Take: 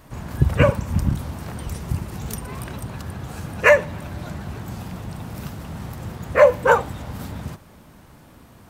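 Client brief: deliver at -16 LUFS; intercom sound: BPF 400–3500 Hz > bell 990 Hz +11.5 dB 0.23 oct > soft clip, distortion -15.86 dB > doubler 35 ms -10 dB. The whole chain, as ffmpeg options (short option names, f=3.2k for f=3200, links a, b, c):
-filter_complex "[0:a]highpass=400,lowpass=3.5k,equalizer=f=990:t=o:w=0.23:g=11.5,asoftclip=threshold=-5dB,asplit=2[a][b];[b]adelay=35,volume=-10dB[c];[a][c]amix=inputs=2:normalize=0,volume=3.5dB"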